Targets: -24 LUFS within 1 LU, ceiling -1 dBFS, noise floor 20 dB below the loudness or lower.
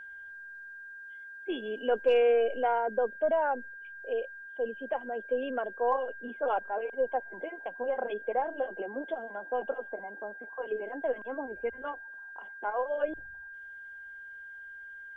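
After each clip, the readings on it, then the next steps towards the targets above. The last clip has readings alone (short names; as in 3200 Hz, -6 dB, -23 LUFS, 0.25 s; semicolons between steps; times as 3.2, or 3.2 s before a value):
steady tone 1600 Hz; tone level -43 dBFS; loudness -32.0 LUFS; peak -16.5 dBFS; loudness target -24.0 LUFS
-> notch 1600 Hz, Q 30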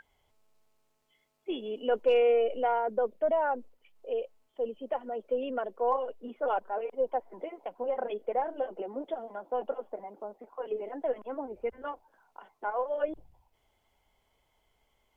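steady tone none; loudness -32.0 LUFS; peak -17.0 dBFS; loudness target -24.0 LUFS
-> gain +8 dB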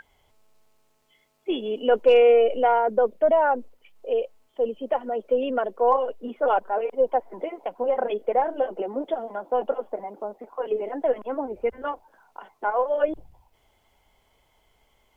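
loudness -24.5 LUFS; peak -9.0 dBFS; noise floor -66 dBFS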